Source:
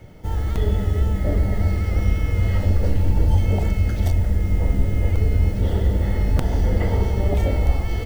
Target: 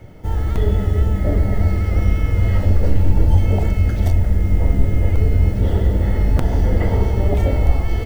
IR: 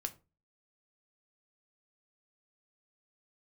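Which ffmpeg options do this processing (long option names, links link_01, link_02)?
-filter_complex "[0:a]asplit=2[link_01][link_02];[1:a]atrim=start_sample=2205,lowpass=3000[link_03];[link_02][link_03]afir=irnorm=-1:irlink=0,volume=-5.5dB[link_04];[link_01][link_04]amix=inputs=2:normalize=0"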